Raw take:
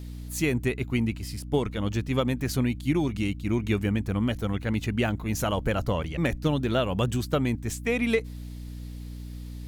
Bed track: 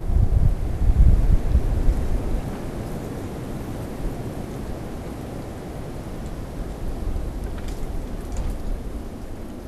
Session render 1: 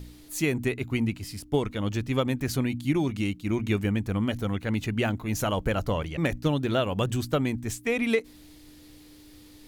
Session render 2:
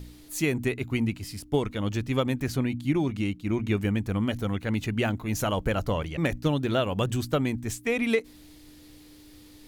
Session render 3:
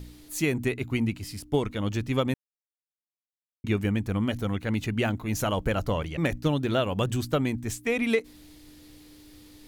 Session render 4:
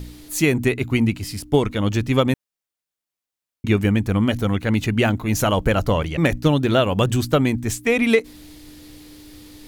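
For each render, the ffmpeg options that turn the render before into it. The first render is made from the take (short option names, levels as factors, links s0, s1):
-af "bandreject=f=60:t=h:w=4,bandreject=f=120:t=h:w=4,bandreject=f=180:t=h:w=4,bandreject=f=240:t=h:w=4"
-filter_complex "[0:a]asettb=1/sr,asplit=3[s0][s1][s2];[s0]atrim=end=2.484[s3];[s1]atrim=start=2.48:end=3.8,asetpts=PTS-STARTPTS,afade=t=in:d=0.004:c=qsin,afade=t=out:st=1.316:d=0.004:c=qsin,highshelf=f=3900:g=-6[s4];[s2]atrim=start=3.796[s5];[s3][s4]acrossfade=d=0.004:c1=hsin:c2=qsin[s6];[s6][s5]acrossfade=d=0.004:c1=qsin:c2=hsin"
-filter_complex "[0:a]asplit=3[s0][s1][s2];[s0]atrim=end=2.34,asetpts=PTS-STARTPTS,afade=t=out:st=2.336:d=0.004:c=hsin[s3];[s1]atrim=start=2.34:end=3.64,asetpts=PTS-STARTPTS,volume=0[s4];[s2]atrim=start=3.64,asetpts=PTS-STARTPTS,afade=t=in:d=0.004:c=hsin[s5];[s3][s4][s5]concat=n=3:v=0:a=1"
-af "volume=2.51"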